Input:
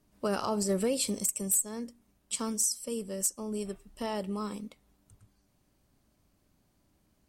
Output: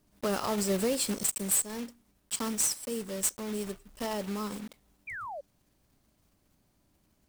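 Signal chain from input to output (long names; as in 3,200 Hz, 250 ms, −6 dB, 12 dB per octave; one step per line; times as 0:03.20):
one scale factor per block 3 bits
sound drawn into the spectrogram fall, 0:05.07–0:05.41, 530–2,500 Hz −39 dBFS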